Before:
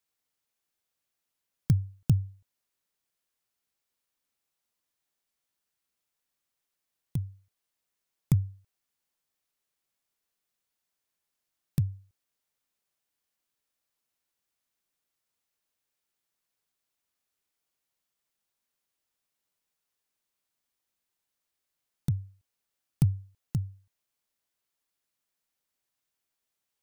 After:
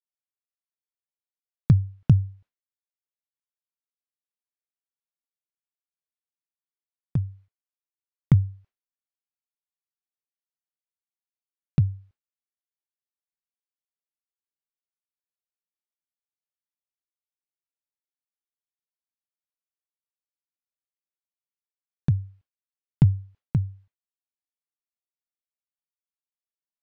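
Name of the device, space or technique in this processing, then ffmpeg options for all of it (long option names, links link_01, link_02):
hearing-loss simulation: -af "lowpass=2800,agate=range=-33dB:threshold=-53dB:ratio=3:detection=peak,volume=6.5dB"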